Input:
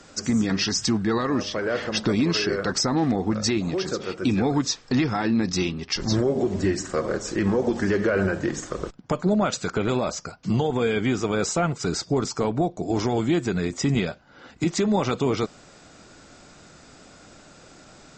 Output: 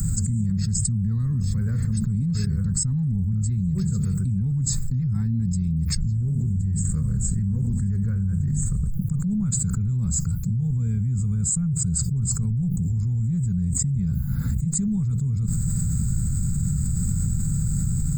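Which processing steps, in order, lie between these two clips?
inverse Chebyshev band-stop 300–6200 Hz, stop band 40 dB; treble shelf 6 kHz +11.5 dB; level flattener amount 100%

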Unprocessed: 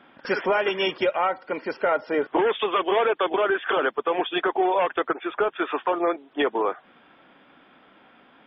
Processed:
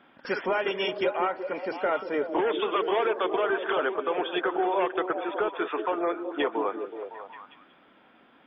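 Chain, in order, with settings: repeats whose band climbs or falls 186 ms, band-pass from 280 Hz, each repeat 0.7 oct, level -3.5 dB; trim -4.5 dB

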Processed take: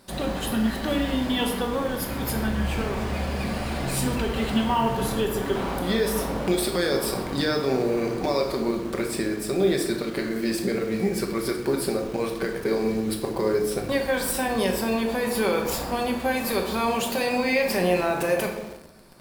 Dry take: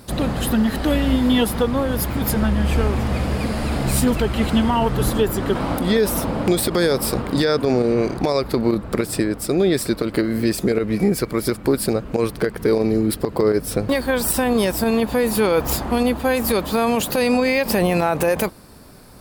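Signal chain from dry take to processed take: treble shelf 10 kHz -6.5 dB; reverberation RT60 0.95 s, pre-delay 5 ms, DRR 1.5 dB; in parallel at -9 dB: bit crusher 5-bit; on the sum: bass shelf 310 Hz -9 dB; band-stop 1.3 kHz, Q 23; trim -7.5 dB

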